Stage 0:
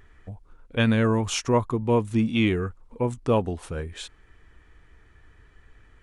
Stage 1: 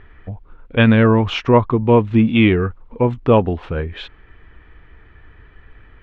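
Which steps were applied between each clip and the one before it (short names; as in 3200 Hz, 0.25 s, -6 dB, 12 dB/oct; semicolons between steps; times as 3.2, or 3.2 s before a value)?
LPF 3300 Hz 24 dB/oct; gain +9 dB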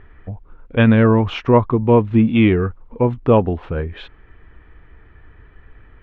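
high shelf 2700 Hz -9 dB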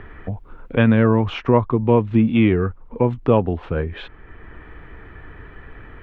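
three-band squash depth 40%; gain -2 dB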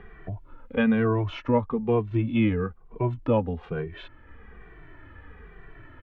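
endless flanger 2.1 ms -1.1 Hz; gain -4.5 dB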